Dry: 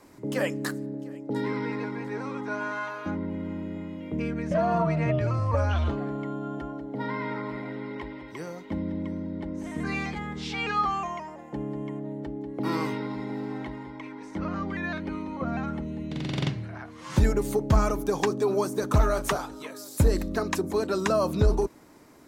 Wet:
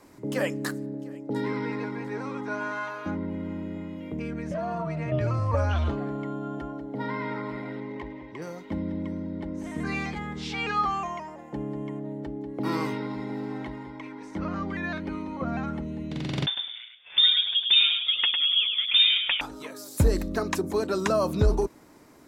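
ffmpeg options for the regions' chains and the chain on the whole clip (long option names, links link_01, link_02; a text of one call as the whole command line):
ffmpeg -i in.wav -filter_complex "[0:a]asettb=1/sr,asplit=3[link_01][link_02][link_03];[link_01]atrim=end=3.964[link_04];[link_02]atrim=start=3.96:end=5.12,asetpts=PTS-STARTPTS,afade=type=in:duration=0.004:curve=qsin,afade=type=out:start_time=1.156:duration=0.004:curve=qsin,highshelf=frequency=10000:gain=5.5,acompressor=threshold=-29dB:ratio=3:attack=3.2:release=140:knee=1:detection=peak[link_05];[link_03]atrim=start=5.116[link_06];[link_04][link_05]acrossfade=duration=0.004:curve1=hsin:curve2=qsin[link_07];[link_07][link_06]acrossfade=duration=0.004:curve1=qsin:curve2=hsin,asettb=1/sr,asplit=3[link_08][link_09][link_10];[link_08]atrim=end=7.804[link_11];[link_09]atrim=start=7.8:end=8.42,asetpts=PTS-STARTPTS,afade=type=in:duration=0.004:curve=qsin,afade=type=out:start_time=0.616:duration=0.004:curve=qsin,bandreject=frequency=1400:width=6.6,adynamicsmooth=sensitivity=5:basefreq=2800[link_12];[link_10]atrim=start=8.416[link_13];[link_11][link_12]acrossfade=duration=0.004:curve1=hsin:curve2=qsin[link_14];[link_14][link_13]acrossfade=duration=0.004:curve1=qsin:curve2=hsin,asettb=1/sr,asplit=3[link_15][link_16][link_17];[link_15]atrim=end=16.464[link_18];[link_16]atrim=start=16.46:end=19.41,asetpts=PTS-STARTPTS,afade=type=in:duration=0.004:curve=qsin,afade=type=out:start_time=2.946:duration=0.004:curve=qsin,lowpass=frequency=3100:width_type=q:width=0.5098,lowpass=frequency=3100:width_type=q:width=0.6013,lowpass=frequency=3100:width_type=q:width=0.9,lowpass=frequency=3100:width_type=q:width=2.563,afreqshift=-3700,agate=range=-33dB:threshold=-34dB:ratio=3:release=100:detection=peak,aecho=1:1:103|206|309:0.531|0.111|0.0234,atrim=end_sample=130095[link_19];[link_17]atrim=start=19.406[link_20];[link_18][link_19]acrossfade=duration=0.004:curve1=hsin:curve2=qsin[link_21];[link_21][link_20]acrossfade=duration=0.004:curve1=qsin:curve2=hsin" out.wav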